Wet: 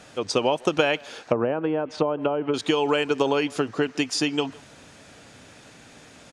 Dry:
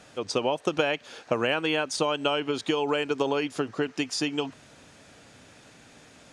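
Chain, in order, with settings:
far-end echo of a speakerphone 160 ms, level −23 dB
0:01.24–0:02.54: treble cut that deepens with the level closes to 790 Hz, closed at −22 dBFS
level +4 dB

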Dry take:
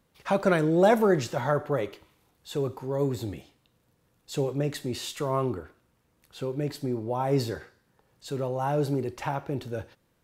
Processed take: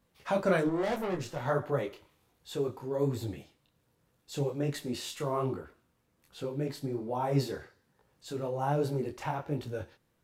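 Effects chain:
0:00.67–0:01.46: tube saturation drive 25 dB, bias 0.7
micro pitch shift up and down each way 43 cents

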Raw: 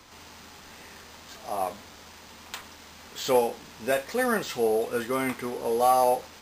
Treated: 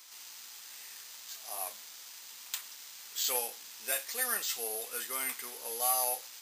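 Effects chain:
first difference
level +5 dB

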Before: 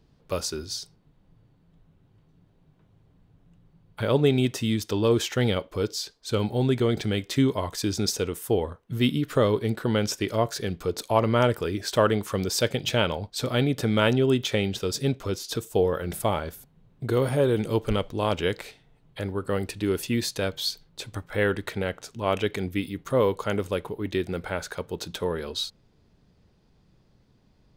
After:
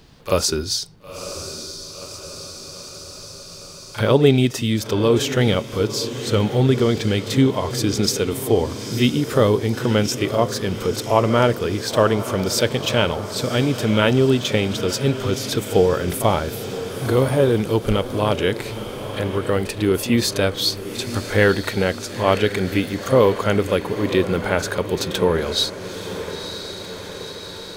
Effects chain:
echo ahead of the sound 38 ms −13 dB
speech leveller within 5 dB 2 s
on a send: feedback delay with all-pass diffusion 975 ms, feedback 59%, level −12 dB
on the sum: one half of a high-frequency compander encoder only
level +5.5 dB

